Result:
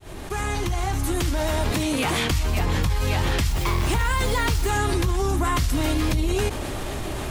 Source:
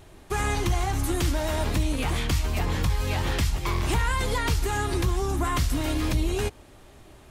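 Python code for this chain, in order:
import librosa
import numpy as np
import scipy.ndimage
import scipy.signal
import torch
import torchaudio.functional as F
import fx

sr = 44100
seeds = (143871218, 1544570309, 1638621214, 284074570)

y = fx.fade_in_head(x, sr, length_s=2.14)
y = fx.bessel_highpass(y, sr, hz=170.0, order=2, at=(1.71, 2.3))
y = fx.dmg_noise_colour(y, sr, seeds[0], colour='white', level_db=-49.0, at=(3.47, 4.69), fade=0.02)
y = fx.env_flatten(y, sr, amount_pct=70)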